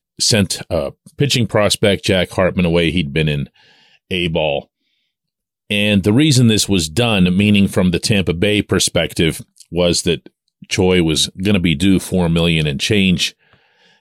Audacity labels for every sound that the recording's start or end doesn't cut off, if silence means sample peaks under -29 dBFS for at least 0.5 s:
4.110000	4.600000	sound
5.700000	13.300000	sound